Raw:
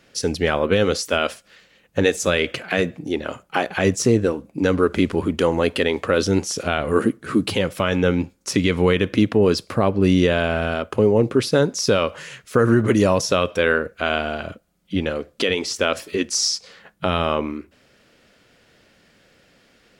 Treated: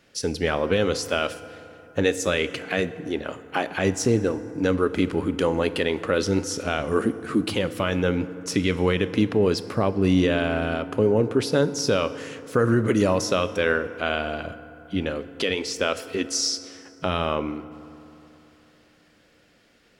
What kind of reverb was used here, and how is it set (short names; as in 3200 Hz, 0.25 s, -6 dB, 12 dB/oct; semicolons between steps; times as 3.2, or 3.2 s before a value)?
FDN reverb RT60 3.3 s, high-frequency decay 0.45×, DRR 13 dB; gain -4 dB